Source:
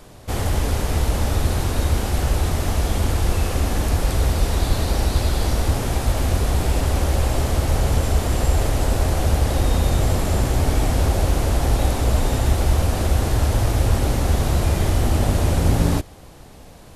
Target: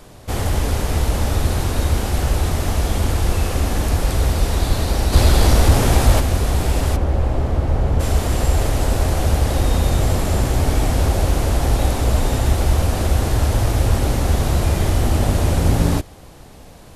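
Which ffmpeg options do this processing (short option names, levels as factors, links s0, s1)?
-filter_complex "[0:a]asplit=3[s0][s1][s2];[s0]afade=t=out:st=5.12:d=0.02[s3];[s1]acontrast=61,afade=t=in:st=5.12:d=0.02,afade=t=out:st=6.19:d=0.02[s4];[s2]afade=t=in:st=6.19:d=0.02[s5];[s3][s4][s5]amix=inputs=3:normalize=0,asplit=3[s6][s7][s8];[s6]afade=t=out:st=6.95:d=0.02[s9];[s7]lowpass=f=1000:p=1,afade=t=in:st=6.95:d=0.02,afade=t=out:st=7.99:d=0.02[s10];[s8]afade=t=in:st=7.99:d=0.02[s11];[s9][s10][s11]amix=inputs=3:normalize=0,volume=1.19"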